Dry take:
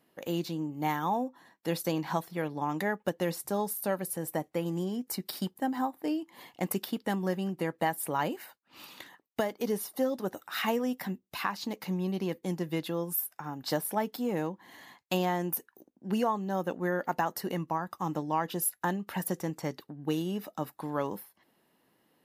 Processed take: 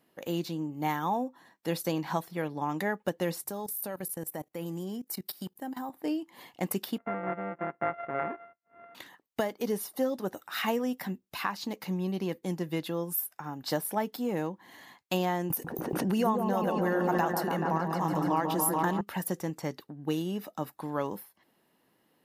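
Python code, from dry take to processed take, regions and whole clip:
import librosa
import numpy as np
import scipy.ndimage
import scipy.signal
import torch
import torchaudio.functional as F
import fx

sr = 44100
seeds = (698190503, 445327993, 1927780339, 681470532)

y = fx.chain(x, sr, fx.high_shelf(hz=11000.0, db=12.0),
    fx.level_steps(step_db=18), at=(3.44, 5.9))
y = fx.chain(y, sr, fx.sample_sort(block=64),
    fx.steep_lowpass(hz=2000.0, slope=36),
    fx.low_shelf(hz=200.0, db=-11.5), at=(6.98, 8.95))
y = fx.chain(y, sr, fx.echo_opening(ms=143, hz=750, octaves=1, feedback_pct=70, wet_db=-3),
    fx.pre_swell(db_per_s=27.0), at=(15.5, 19.01))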